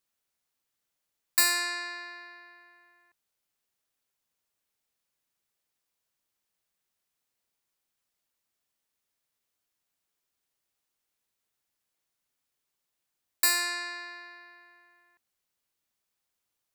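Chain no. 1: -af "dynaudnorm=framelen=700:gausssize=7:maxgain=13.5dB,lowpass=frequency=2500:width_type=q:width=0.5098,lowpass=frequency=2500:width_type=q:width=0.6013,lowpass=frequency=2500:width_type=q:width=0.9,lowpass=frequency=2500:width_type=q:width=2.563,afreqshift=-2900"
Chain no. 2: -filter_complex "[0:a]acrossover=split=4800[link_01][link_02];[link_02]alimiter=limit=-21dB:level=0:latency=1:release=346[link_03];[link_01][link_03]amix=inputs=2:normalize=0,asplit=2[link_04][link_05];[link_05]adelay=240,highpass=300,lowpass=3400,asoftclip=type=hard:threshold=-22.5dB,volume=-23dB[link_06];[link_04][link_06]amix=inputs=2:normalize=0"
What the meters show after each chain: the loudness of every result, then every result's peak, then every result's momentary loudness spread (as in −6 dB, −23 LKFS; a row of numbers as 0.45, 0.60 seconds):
−28.5, −30.5 LKFS; −10.5, −14.0 dBFS; 21, 21 LU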